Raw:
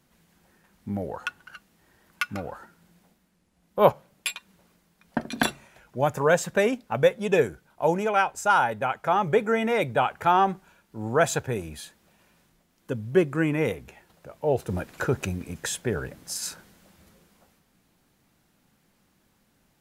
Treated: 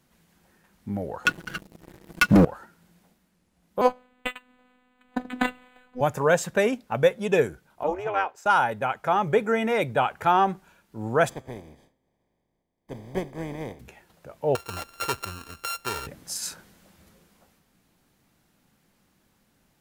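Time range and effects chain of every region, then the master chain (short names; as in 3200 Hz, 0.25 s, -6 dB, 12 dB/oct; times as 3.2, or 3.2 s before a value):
1.25–2.45 resonant low shelf 560 Hz +11.5 dB, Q 1.5 + comb 6.1 ms, depth 44% + sample leveller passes 3
3.81–6.01 robotiser 250 Hz + decimation joined by straight lines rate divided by 8×
7.83–8.46 elliptic high-pass 340 Hz + bell 9600 Hz -15 dB 1.3 oct + AM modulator 300 Hz, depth 40%
11.28–13.79 spectral contrast lowered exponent 0.3 + running mean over 32 samples + resonator 130 Hz, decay 0.99 s, mix 30%
14.55–16.07 sample sorter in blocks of 32 samples + bell 170 Hz -15 dB 2 oct
whole clip: dry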